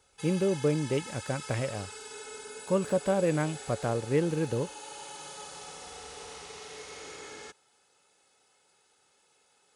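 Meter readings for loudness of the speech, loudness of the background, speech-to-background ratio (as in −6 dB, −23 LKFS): −30.0 LKFS, −42.5 LKFS, 12.5 dB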